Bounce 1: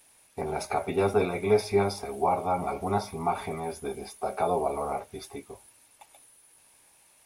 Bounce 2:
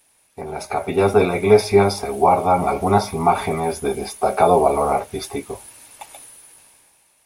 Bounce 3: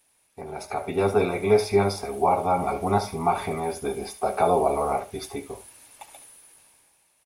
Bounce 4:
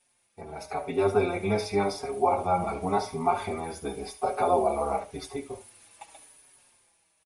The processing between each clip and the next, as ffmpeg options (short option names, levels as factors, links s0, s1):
-af "dynaudnorm=f=130:g=13:m=5.96"
-af "aecho=1:1:71:0.2,volume=0.473"
-filter_complex "[0:a]aresample=22050,aresample=44100,asplit=2[s0][s1];[s1]adelay=5.1,afreqshift=-0.91[s2];[s0][s2]amix=inputs=2:normalize=1"